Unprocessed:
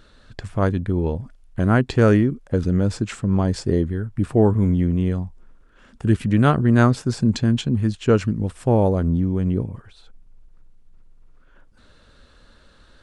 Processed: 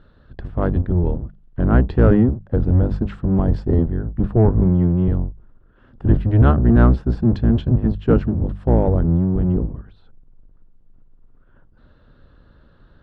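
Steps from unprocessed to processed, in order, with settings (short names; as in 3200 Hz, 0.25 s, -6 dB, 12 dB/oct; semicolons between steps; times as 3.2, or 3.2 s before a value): octaver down 1 oct, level +4 dB; bell 2300 Hz -8 dB 0.45 oct; notches 50/100/150/200 Hz; added harmonics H 8 -32 dB, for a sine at 0 dBFS; air absorption 400 m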